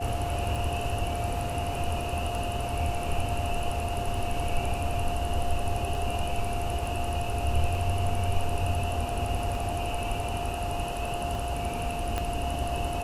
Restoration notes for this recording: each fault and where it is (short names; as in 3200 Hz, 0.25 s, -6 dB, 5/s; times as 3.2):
tick 33 1/3 rpm
tone 700 Hz -33 dBFS
4.15 gap 2 ms
6.86 gap 2 ms
12.18 pop -15 dBFS